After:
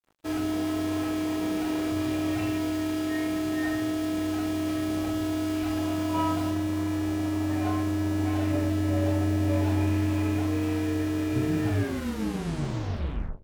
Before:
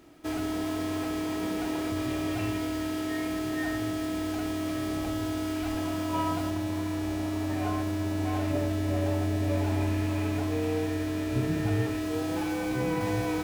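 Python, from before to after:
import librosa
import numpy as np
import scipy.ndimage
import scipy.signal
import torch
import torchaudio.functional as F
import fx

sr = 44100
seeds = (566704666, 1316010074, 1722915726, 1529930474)

y = fx.tape_stop_end(x, sr, length_s=1.78)
y = fx.room_early_taps(y, sr, ms=(29, 42), db=(-16.0, -6.5))
y = np.sign(y) * np.maximum(np.abs(y) - 10.0 ** (-48.0 / 20.0), 0.0)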